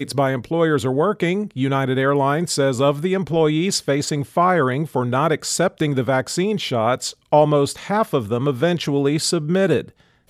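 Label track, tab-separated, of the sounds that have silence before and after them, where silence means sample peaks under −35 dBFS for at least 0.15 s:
7.320000	9.880000	sound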